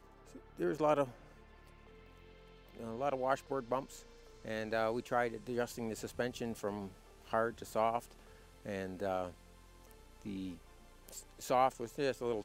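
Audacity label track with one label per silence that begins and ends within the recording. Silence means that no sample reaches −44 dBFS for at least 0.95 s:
1.110000	2.770000	silence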